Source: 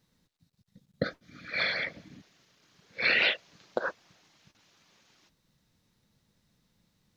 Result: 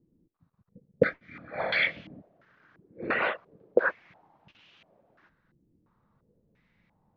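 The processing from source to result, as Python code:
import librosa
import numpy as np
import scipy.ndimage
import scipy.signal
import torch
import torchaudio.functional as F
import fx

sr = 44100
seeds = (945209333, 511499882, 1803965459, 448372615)

y = fx.doubler(x, sr, ms=25.0, db=-8.0, at=(1.23, 2.12))
y = fx.filter_held_lowpass(y, sr, hz=2.9, low_hz=340.0, high_hz=2900.0)
y = y * librosa.db_to_amplitude(1.5)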